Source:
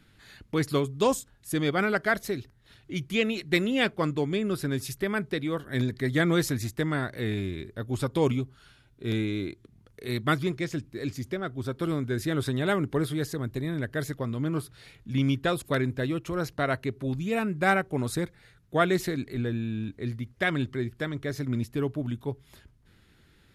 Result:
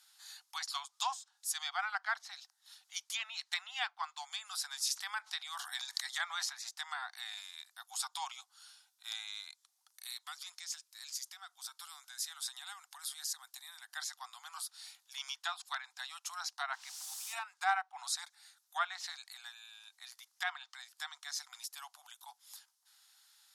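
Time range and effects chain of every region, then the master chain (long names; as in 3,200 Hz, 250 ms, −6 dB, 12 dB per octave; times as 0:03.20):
0:04.87–0:06.69: high-shelf EQ 5,200 Hz +8 dB + level that may fall only so fast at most 67 dB per second
0:10.04–0:13.89: high-pass filter 1,200 Hz 6 dB per octave + downward compressor 2.5 to 1, threshold −40 dBFS
0:16.73–0:17.33: band-pass filter 730–2,800 Hz + bit-depth reduction 8 bits, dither triangular
whole clip: Chebyshev high-pass filter 740 Hz, order 8; treble cut that deepens with the level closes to 2,400 Hz, closed at −29 dBFS; drawn EQ curve 1,000 Hz 0 dB, 2,300 Hz −5 dB, 5,400 Hz +14 dB; level −4.5 dB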